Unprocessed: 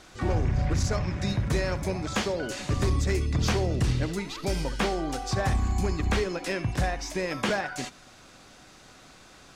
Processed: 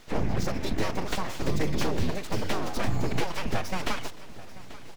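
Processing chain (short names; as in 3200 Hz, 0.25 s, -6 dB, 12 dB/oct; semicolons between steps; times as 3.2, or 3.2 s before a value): median filter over 5 samples; bell 1200 Hz -8.5 dB 0.45 oct; time stretch by phase-locked vocoder 0.52×; full-wave rectifier; feedback echo 0.837 s, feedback 54%, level -17.5 dB; gain +3 dB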